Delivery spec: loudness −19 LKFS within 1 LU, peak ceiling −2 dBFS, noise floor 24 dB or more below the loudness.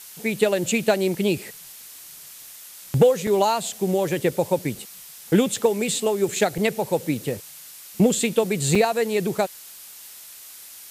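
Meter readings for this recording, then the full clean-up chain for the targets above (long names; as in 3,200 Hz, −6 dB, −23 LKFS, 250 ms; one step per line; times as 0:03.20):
number of dropouts 4; longest dropout 3.9 ms; background noise floor −43 dBFS; target noise floor −47 dBFS; integrated loudness −22.5 LKFS; sample peak −6.0 dBFS; target loudness −19.0 LKFS
→ repair the gap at 0:03.27/0:05.56/0:06.58/0:08.75, 3.9 ms
broadband denoise 6 dB, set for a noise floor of −43 dBFS
level +3.5 dB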